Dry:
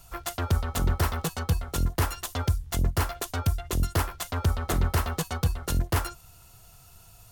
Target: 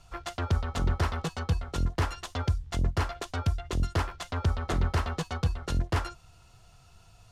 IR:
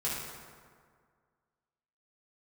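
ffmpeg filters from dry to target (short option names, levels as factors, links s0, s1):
-af "lowpass=5400,volume=0.794"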